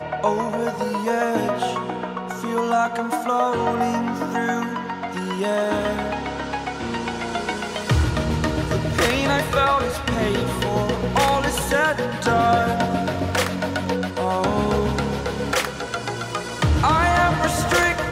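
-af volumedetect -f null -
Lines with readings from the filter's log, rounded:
mean_volume: -21.8 dB
max_volume: -7.8 dB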